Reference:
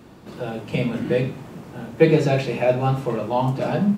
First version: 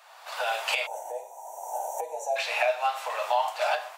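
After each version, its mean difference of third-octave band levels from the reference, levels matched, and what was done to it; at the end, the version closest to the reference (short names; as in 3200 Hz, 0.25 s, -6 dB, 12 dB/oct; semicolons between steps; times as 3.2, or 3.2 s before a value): 18.5 dB: recorder AGC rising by 28 dB/s; steep high-pass 660 Hz 48 dB/oct; spectral gain 0.86–2.36, 1000–5600 Hz -29 dB; dynamic EQ 930 Hz, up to -4 dB, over -31 dBFS, Q 0.91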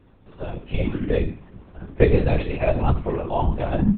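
7.0 dB: spectral noise reduction 8 dB; low shelf 130 Hz +8.5 dB; LPC vocoder at 8 kHz whisper; gain -2 dB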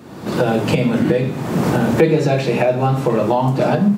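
5.0 dB: recorder AGC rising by 44 dB/s; HPF 94 Hz; bell 2800 Hz -3 dB 0.77 oct; in parallel at -0.5 dB: compressor, threshold -31 dBFS, peak gain reduction 20.5 dB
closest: third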